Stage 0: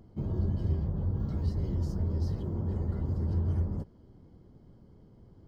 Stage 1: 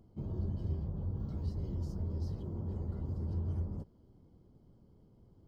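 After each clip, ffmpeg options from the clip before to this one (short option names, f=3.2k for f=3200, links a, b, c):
-af "equalizer=f=1.8k:t=o:w=0.56:g=-6.5,volume=-6.5dB"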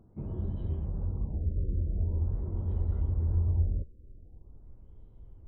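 -af "asubboost=boost=10:cutoff=57,afftfilt=real='re*lt(b*sr/1024,590*pow(4100/590,0.5+0.5*sin(2*PI*0.44*pts/sr)))':imag='im*lt(b*sr/1024,590*pow(4100/590,0.5+0.5*sin(2*PI*0.44*pts/sr)))':win_size=1024:overlap=0.75,volume=2.5dB"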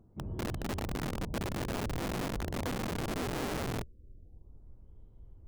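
-af "aeval=exprs='(mod(23.7*val(0)+1,2)-1)/23.7':c=same,volume=-2.5dB"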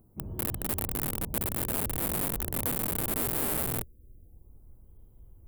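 -af "aexciter=amount=7.8:drive=6.5:freq=8.4k"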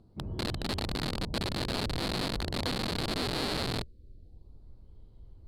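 -af "lowpass=f=4.3k:t=q:w=6.1,volume=1.5dB"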